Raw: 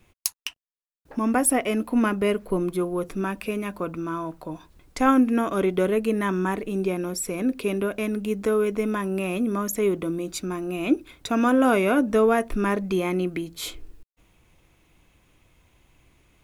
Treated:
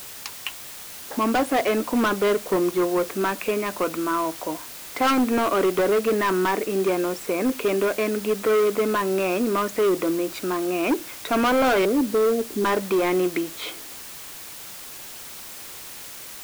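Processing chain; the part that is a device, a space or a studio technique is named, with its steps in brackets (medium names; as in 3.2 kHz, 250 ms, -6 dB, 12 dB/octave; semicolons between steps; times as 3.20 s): 11.85–12.65 s: inverse Chebyshev band-stop 980–5700 Hz, stop band 50 dB; aircraft radio (band-pass 370–2300 Hz; hard clipper -25.5 dBFS, distortion -8 dB; white noise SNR 15 dB); trim +8.5 dB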